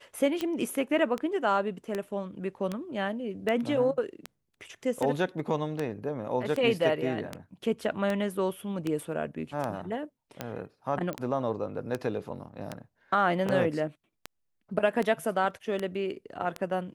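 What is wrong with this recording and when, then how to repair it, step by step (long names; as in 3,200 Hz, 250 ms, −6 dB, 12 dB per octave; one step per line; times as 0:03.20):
scratch tick 78 rpm −17 dBFS
0:11.13: click −21 dBFS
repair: click removal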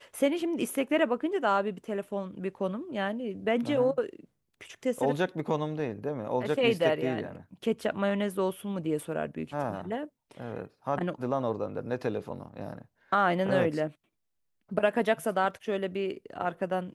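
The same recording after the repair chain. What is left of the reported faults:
none of them is left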